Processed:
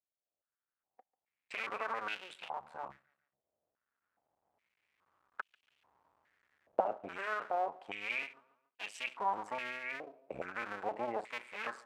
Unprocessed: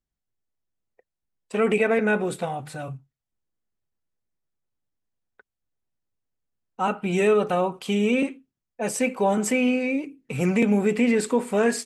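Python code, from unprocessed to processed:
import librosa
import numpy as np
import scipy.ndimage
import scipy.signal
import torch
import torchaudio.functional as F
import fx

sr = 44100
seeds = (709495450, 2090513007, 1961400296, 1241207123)

y = fx.cycle_switch(x, sr, every=2, mode='muted')
y = fx.recorder_agc(y, sr, target_db=-15.0, rise_db_per_s=9.8, max_gain_db=30)
y = fx.echo_feedback(y, sr, ms=143, feedback_pct=42, wet_db=-23.5)
y = fx.filter_held_bandpass(y, sr, hz=2.4, low_hz=620.0, high_hz=2800.0)
y = F.gain(torch.from_numpy(y), -2.0).numpy()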